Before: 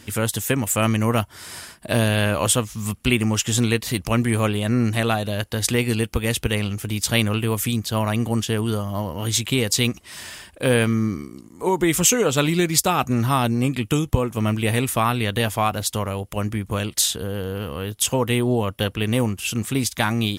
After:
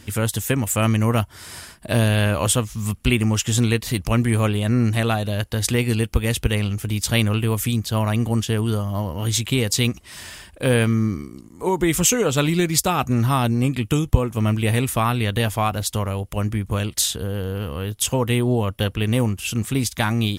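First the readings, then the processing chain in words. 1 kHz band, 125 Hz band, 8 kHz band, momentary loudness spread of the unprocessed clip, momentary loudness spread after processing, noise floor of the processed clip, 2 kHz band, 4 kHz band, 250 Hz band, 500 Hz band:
-1.0 dB, +3.0 dB, -1.0 dB, 8 LU, 7 LU, -45 dBFS, -1.0 dB, -1.0 dB, +0.5 dB, -0.5 dB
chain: bass shelf 89 Hz +10.5 dB; trim -1 dB

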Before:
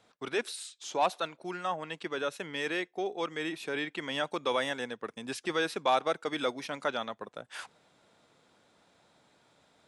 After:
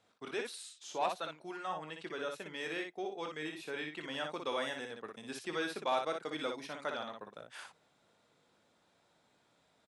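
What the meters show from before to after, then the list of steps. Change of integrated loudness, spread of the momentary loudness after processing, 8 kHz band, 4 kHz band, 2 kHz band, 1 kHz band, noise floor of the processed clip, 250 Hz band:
-6.0 dB, 10 LU, -6.0 dB, -6.0 dB, -6.0 dB, -6.0 dB, -72 dBFS, -6.0 dB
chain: early reflections 19 ms -10.5 dB, 59 ms -5 dB; trim -7.5 dB

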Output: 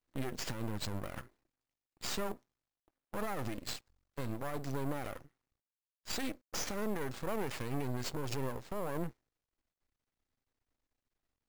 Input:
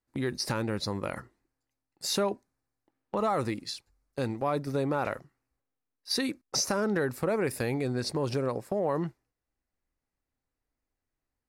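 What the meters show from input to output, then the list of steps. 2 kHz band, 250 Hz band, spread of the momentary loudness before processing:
-7.5 dB, -8.5 dB, 10 LU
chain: sample-rate reducer 12 kHz, jitter 0%; peak limiter -26.5 dBFS, peak gain reduction 10 dB; half-wave rectifier; trim +1.5 dB

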